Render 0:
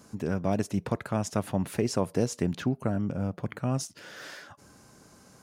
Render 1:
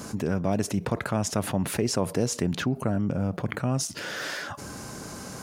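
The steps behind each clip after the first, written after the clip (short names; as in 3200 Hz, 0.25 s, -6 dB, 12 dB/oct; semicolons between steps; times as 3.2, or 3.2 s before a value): fast leveller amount 50%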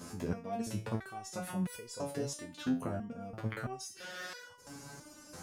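stepped resonator 3 Hz 86–490 Hz; gain +1 dB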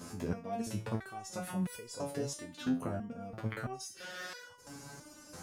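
pre-echo 59 ms -22.5 dB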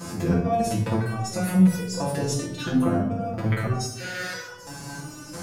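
reverb RT60 0.85 s, pre-delay 6 ms, DRR -3 dB; gain +7.5 dB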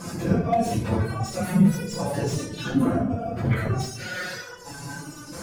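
phase scrambler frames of 50 ms; slew limiter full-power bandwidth 110 Hz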